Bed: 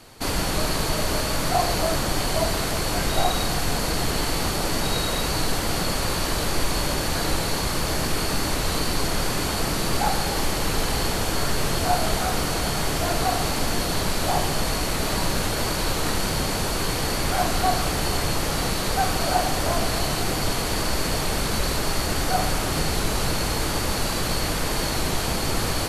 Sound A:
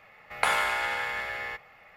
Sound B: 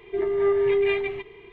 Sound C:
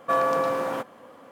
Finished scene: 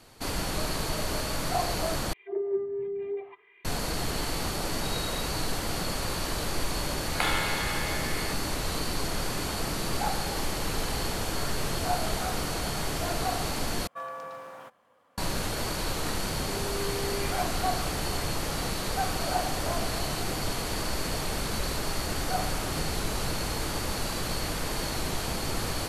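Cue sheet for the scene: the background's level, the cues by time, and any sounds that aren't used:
bed -6.5 dB
2.13 s: replace with B -2 dB + auto-wah 220–2500 Hz, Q 2.5, down, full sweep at -18 dBFS
6.77 s: add A -5 dB + peaking EQ 3.6 kHz +7 dB
13.87 s: replace with C -13 dB + peaking EQ 300 Hz -10 dB 1.6 oct
16.34 s: add B -15.5 dB + jump at every zero crossing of -36 dBFS

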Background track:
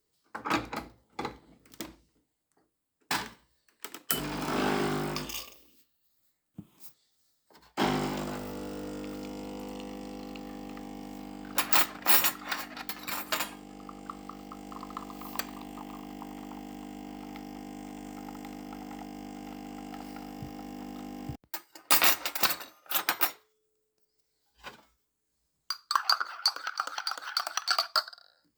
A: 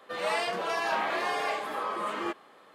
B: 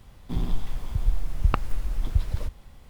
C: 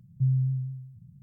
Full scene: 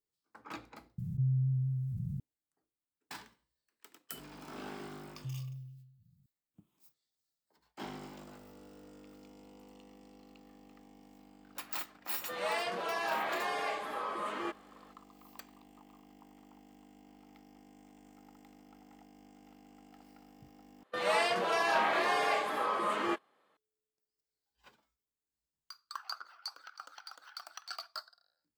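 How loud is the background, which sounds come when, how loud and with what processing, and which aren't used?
background track -16 dB
0.98 s: replace with C -7 dB + level flattener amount 70%
5.04 s: add C -16.5 dB
12.19 s: add A -5 dB
20.83 s: replace with A + gate -42 dBFS, range -16 dB
not used: B

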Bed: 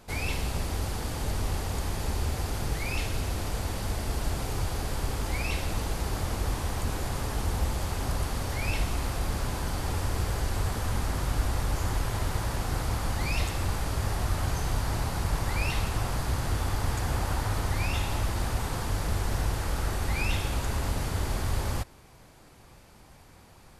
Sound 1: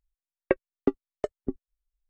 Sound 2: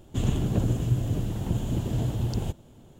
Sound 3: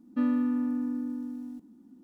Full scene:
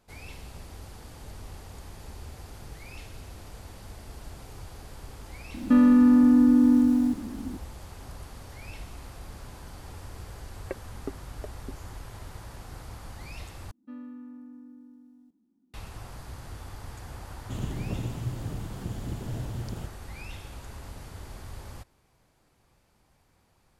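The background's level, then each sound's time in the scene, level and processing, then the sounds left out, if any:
bed -13 dB
5.54 s: add 3 -11 dB + loudness maximiser +28 dB
10.20 s: add 1 -12.5 dB
13.71 s: replace with 3 -16 dB
17.35 s: add 2 -8 dB

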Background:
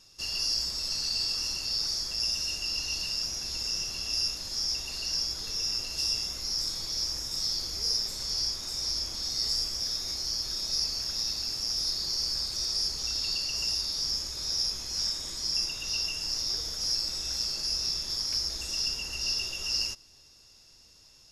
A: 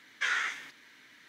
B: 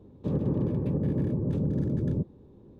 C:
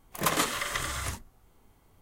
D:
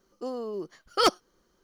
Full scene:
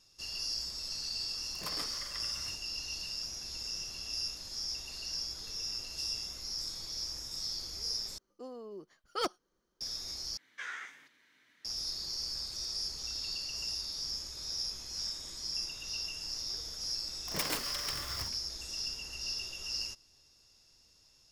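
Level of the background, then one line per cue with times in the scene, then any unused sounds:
background -7.5 dB
1.40 s: add C -17 dB
8.18 s: replace with D -11.5 dB
10.37 s: replace with A -10.5 dB + dynamic bell 3.5 kHz, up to -4 dB, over -47 dBFS, Q 1.1
17.13 s: add C -7.5 dB + self-modulated delay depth 0.52 ms
not used: B

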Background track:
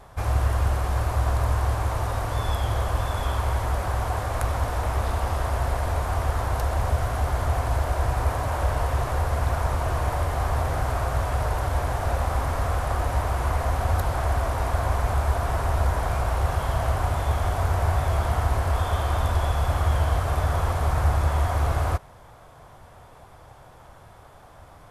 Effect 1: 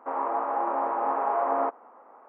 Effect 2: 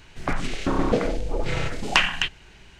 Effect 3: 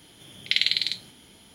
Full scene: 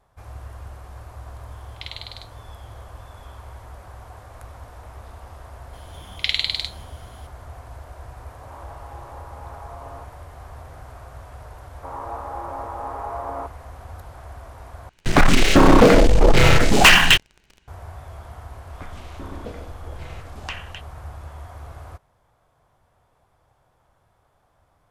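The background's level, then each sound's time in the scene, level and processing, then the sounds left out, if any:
background track -15.5 dB
1.30 s: add 3 -14 dB
5.73 s: add 3
8.33 s: add 1 -15.5 dB + phase dispersion highs, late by 45 ms, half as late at 970 Hz
11.77 s: add 1 -5 dB
14.89 s: replace with 2 -3 dB + waveshaping leveller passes 5
18.53 s: add 2 -14.5 dB

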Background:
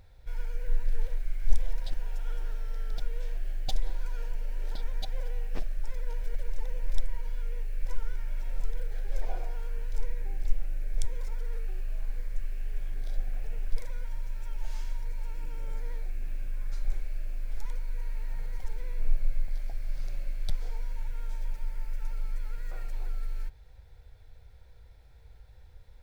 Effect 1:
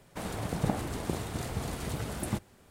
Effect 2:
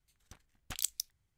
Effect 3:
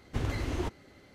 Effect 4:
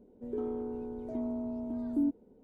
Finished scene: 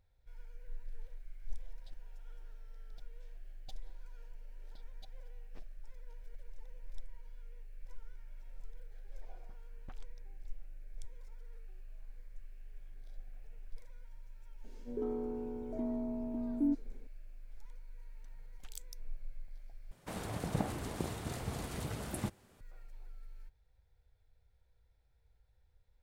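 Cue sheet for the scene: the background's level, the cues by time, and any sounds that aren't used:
background -17.5 dB
9.18 s: add 2 -5 dB + low-pass 1 kHz
14.64 s: add 4 -2 dB + attacks held to a fixed rise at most 340 dB/s
17.93 s: add 2 -16 dB
19.91 s: replace with 1 -5 dB
not used: 3

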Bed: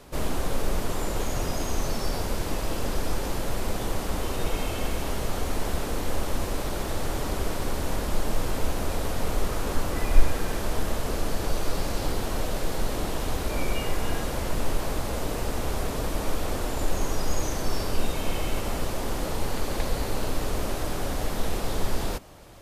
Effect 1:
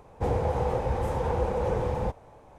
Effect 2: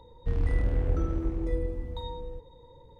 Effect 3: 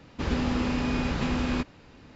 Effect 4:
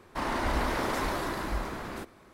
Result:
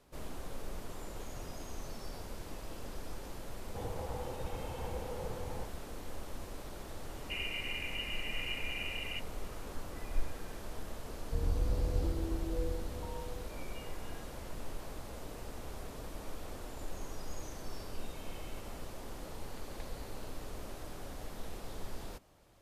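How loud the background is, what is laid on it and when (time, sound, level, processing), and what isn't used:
bed -16 dB
3.54 s: add 1 -15 dB
7.09 s: add 1 -14.5 dB + frequency inversion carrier 2.9 kHz
11.06 s: add 2 -5.5 dB + elliptic low-pass 1.1 kHz
not used: 3, 4

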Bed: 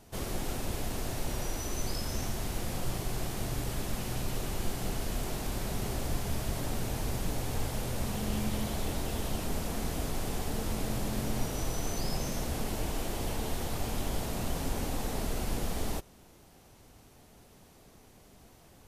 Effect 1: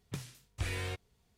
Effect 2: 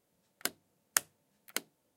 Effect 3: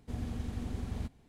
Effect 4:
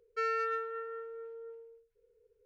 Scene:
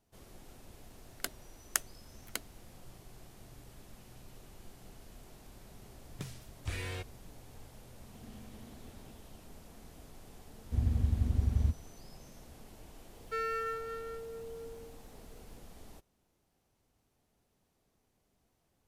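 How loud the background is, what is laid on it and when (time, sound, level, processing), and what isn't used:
bed -19.5 dB
0.79 s: add 2 -3 dB
6.07 s: add 1 -2.5 dB
8.05 s: add 3 -13 dB + high-pass 130 Hz
10.64 s: add 3 -4 dB + peaking EQ 75 Hz +15 dB 1.9 oct
13.15 s: add 4 -4 dB + companding laws mixed up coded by mu

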